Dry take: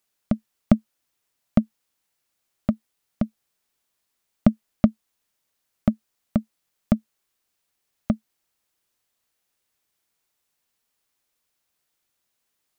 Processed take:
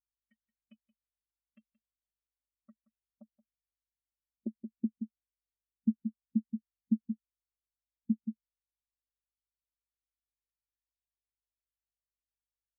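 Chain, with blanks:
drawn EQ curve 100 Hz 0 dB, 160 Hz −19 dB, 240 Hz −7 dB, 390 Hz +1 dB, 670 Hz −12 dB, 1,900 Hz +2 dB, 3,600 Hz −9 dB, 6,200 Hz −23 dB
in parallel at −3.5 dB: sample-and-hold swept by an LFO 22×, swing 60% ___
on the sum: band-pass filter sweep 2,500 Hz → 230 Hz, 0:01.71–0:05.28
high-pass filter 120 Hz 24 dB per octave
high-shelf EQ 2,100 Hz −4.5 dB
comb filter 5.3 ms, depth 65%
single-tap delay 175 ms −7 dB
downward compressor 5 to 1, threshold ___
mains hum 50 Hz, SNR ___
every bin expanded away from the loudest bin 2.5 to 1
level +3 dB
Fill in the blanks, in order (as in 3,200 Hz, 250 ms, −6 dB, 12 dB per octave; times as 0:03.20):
1.1 Hz, −34 dBFS, 19 dB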